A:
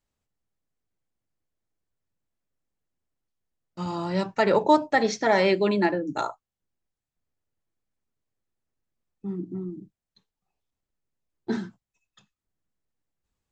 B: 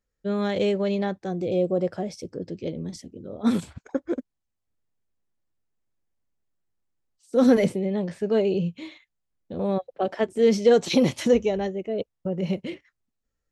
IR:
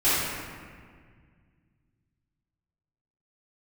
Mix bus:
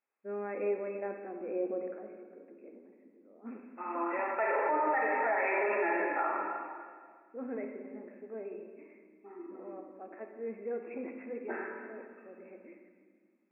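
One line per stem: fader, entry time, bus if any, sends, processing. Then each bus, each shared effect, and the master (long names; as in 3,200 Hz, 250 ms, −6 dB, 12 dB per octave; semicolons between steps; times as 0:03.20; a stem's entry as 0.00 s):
−4.5 dB, 0.00 s, send −11 dB, high-pass filter 660 Hz 12 dB per octave
0:01.77 −12.5 dB → 0:02.12 −21.5 dB, 0.00 s, send −19 dB, transient designer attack −2 dB, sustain +5 dB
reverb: on, RT60 1.8 s, pre-delay 3 ms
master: linear-phase brick-wall band-pass 210–2,700 Hz; brickwall limiter −22 dBFS, peak gain reduction 11 dB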